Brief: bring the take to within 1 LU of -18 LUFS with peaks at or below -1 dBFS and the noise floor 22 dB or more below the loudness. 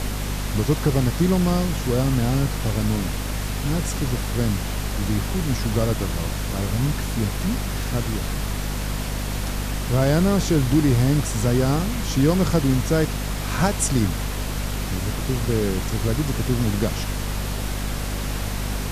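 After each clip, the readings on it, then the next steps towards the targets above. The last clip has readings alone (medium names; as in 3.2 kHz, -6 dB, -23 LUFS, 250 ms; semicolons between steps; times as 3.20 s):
hum 50 Hz; highest harmonic 250 Hz; hum level -25 dBFS; noise floor -27 dBFS; noise floor target -45 dBFS; loudness -23.0 LUFS; peak level -6.5 dBFS; loudness target -18.0 LUFS
-> de-hum 50 Hz, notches 5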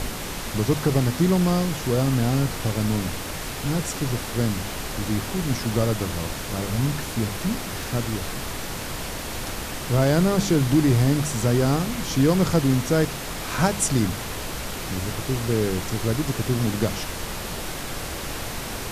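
hum not found; noise floor -32 dBFS; noise floor target -47 dBFS
-> noise print and reduce 15 dB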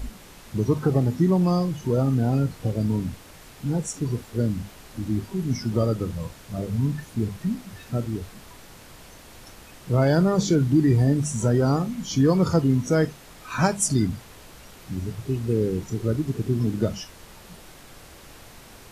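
noise floor -47 dBFS; loudness -24.5 LUFS; peak level -8.5 dBFS; loudness target -18.0 LUFS
-> trim +6.5 dB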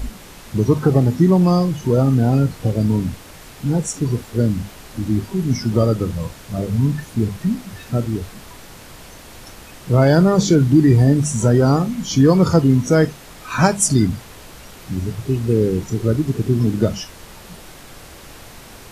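loudness -18.0 LUFS; peak level -2.0 dBFS; noise floor -40 dBFS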